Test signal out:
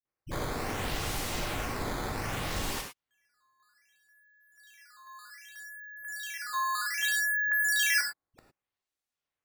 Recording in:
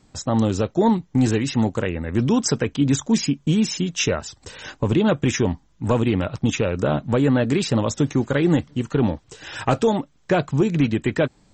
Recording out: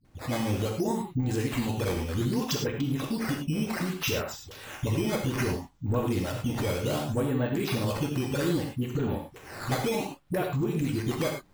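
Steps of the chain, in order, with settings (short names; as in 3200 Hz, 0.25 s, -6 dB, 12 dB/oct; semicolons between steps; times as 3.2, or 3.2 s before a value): dispersion highs, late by 50 ms, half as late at 370 Hz; decimation with a swept rate 9×, swing 160% 0.64 Hz; compressor, threshold -19 dBFS; non-linear reverb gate 0.13 s flat, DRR 1.5 dB; gain -6.5 dB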